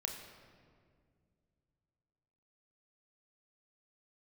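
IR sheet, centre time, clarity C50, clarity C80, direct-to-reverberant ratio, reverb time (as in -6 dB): 46 ms, 5.0 dB, 6.5 dB, 2.5 dB, 2.1 s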